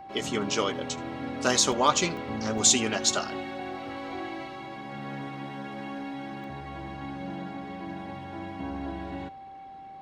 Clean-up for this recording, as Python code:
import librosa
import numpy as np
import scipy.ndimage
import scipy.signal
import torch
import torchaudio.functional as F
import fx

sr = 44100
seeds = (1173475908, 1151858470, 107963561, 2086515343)

y = fx.notch(x, sr, hz=780.0, q=30.0)
y = fx.fix_interpolate(y, sr, at_s=(1.72, 2.17, 2.58, 6.44), length_ms=1.6)
y = fx.fix_echo_inverse(y, sr, delay_ms=77, level_db=-23.5)